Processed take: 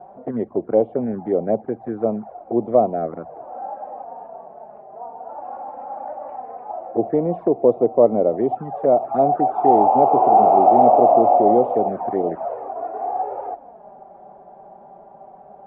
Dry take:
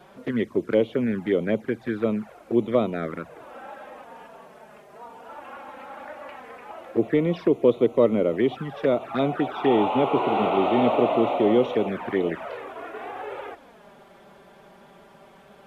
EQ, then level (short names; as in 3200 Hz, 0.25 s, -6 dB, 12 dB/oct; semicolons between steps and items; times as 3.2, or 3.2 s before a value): synth low-pass 750 Hz, resonance Q 6.9; -1.0 dB